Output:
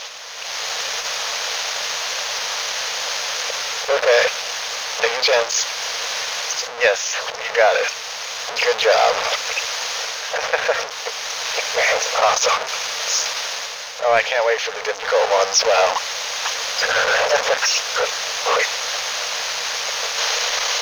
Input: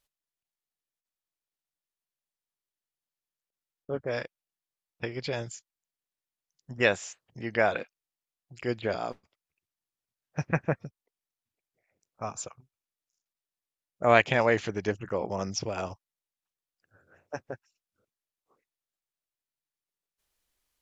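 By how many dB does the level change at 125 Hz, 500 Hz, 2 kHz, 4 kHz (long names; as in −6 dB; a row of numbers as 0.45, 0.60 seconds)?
below −10 dB, +12.0 dB, +14.5 dB, +25.0 dB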